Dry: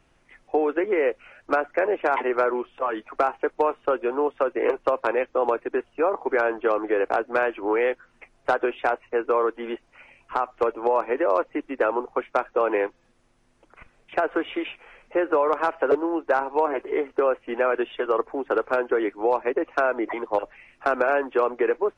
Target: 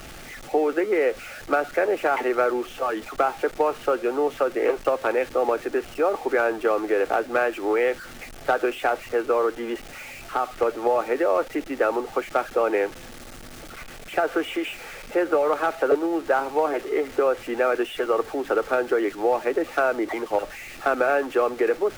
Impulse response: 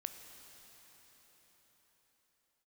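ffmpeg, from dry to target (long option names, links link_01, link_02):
-af "aeval=exprs='val(0)+0.5*0.0178*sgn(val(0))':channel_layout=same,asuperstop=centerf=1000:order=4:qfactor=7.1"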